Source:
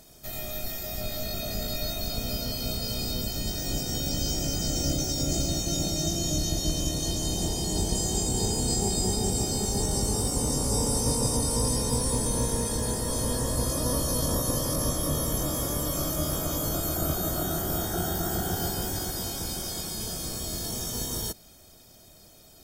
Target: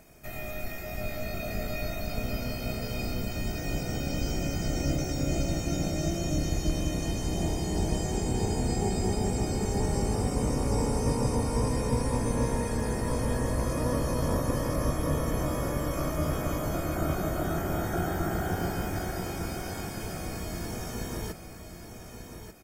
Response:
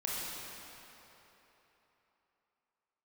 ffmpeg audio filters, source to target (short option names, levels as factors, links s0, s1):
-filter_complex "[0:a]acrossover=split=6100[s0][s1];[s1]acompressor=threshold=0.0126:ratio=4:attack=1:release=60[s2];[s0][s2]amix=inputs=2:normalize=0,highshelf=f=2900:t=q:w=3:g=-6.5,asplit=2[s3][s4];[s4]aecho=0:1:1189|2378|3567:0.355|0.0993|0.0278[s5];[s3][s5]amix=inputs=2:normalize=0"